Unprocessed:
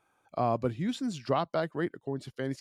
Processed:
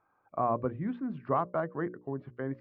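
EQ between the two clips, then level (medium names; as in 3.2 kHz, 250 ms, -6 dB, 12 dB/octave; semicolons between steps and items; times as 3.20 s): low-pass 1.8 kHz 24 dB/octave; peaking EQ 1.1 kHz +6.5 dB 0.25 oct; hum notches 60/120/180/240/300/360/420/480/540/600 Hz; -1.5 dB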